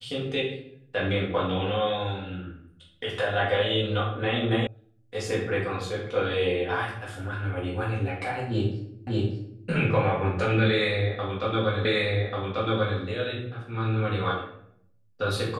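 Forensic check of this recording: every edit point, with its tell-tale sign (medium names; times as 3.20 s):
4.67 s: sound stops dead
9.07 s: repeat of the last 0.59 s
11.85 s: repeat of the last 1.14 s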